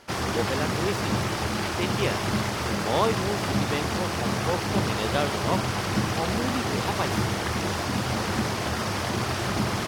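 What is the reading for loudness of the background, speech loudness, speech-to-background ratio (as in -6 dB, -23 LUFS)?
-27.0 LUFS, -31.5 LUFS, -4.5 dB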